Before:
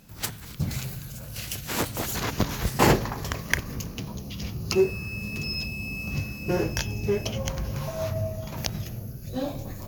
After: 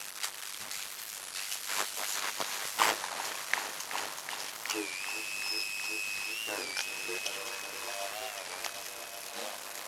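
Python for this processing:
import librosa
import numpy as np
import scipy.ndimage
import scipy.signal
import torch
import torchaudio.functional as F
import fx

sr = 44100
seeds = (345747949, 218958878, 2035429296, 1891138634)

y = fx.delta_mod(x, sr, bps=64000, step_db=-28.0)
y = scipy.signal.sosfilt(scipy.signal.butter(2, 900.0, 'highpass', fs=sr, output='sos'), y)
y = y * np.sin(2.0 * np.pi * 50.0 * np.arange(len(y)) / sr)
y = fx.echo_heads(y, sr, ms=377, heads='all three', feedback_pct=58, wet_db=-14.0)
y = fx.record_warp(y, sr, rpm=33.33, depth_cents=160.0)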